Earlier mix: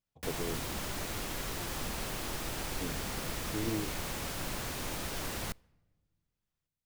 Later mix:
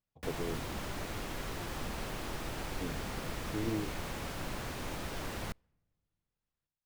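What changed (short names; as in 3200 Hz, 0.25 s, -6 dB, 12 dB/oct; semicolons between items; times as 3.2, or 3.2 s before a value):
background: send -7.5 dB; master: add high shelf 4100 Hz -9 dB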